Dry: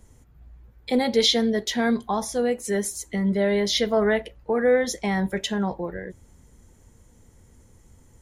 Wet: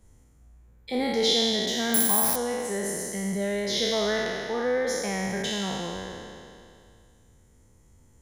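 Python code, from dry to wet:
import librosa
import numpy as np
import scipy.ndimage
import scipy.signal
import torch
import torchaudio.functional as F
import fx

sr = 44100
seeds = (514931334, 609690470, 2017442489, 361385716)

y = fx.spec_trails(x, sr, decay_s=2.36)
y = fx.resample_bad(y, sr, factor=4, down='none', up='zero_stuff', at=(1.94, 2.36))
y = y * 10.0 ** (-8.0 / 20.0)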